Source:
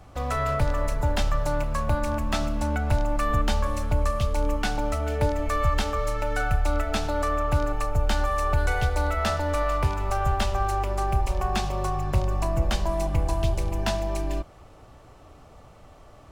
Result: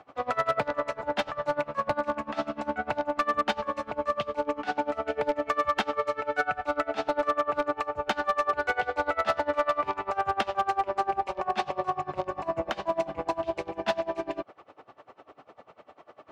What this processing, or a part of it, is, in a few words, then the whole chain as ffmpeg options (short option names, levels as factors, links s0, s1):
helicopter radio: -af "highpass=340,lowpass=2800,aeval=exprs='val(0)*pow(10,-23*(0.5-0.5*cos(2*PI*10*n/s))/20)':c=same,asoftclip=type=hard:threshold=0.0631,volume=2.24"